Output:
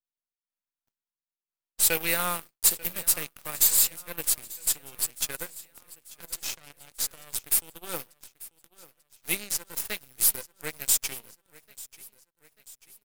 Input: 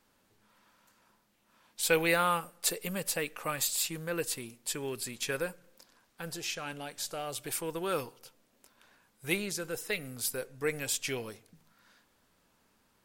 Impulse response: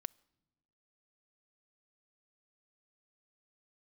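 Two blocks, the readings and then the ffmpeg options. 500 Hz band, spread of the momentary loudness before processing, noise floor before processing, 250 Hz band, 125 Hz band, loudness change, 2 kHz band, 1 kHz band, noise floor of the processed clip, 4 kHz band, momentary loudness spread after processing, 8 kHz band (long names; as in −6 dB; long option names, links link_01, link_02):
−6.5 dB, 10 LU, −71 dBFS, −6.0 dB, −5.5 dB, +7.0 dB, −1.0 dB, −3.5 dB, below −85 dBFS, +3.5 dB, 21 LU, +9.5 dB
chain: -filter_complex "[0:a]aemphasis=mode=production:type=75fm,flanger=delay=1.3:depth=4.6:regen=77:speed=0.18:shape=sinusoidal,aeval=exprs='0.141*(cos(1*acos(clip(val(0)/0.141,-1,1)))-cos(1*PI/2))+0.01*(cos(6*acos(clip(val(0)/0.141,-1,1)))-cos(6*PI/2))+0.02*(cos(7*acos(clip(val(0)/0.141,-1,1)))-cos(7*PI/2))':channel_layout=same,asplit=2[link_01][link_02];[link_02]aeval=exprs='0.0282*(abs(mod(val(0)/0.0282+3,4)-2)-1)':channel_layout=same,volume=-10dB[link_03];[link_01][link_03]amix=inputs=2:normalize=0,aecho=1:1:890|1780|2670|3560:0.1|0.051|0.026|0.0133,volume=2.5dB"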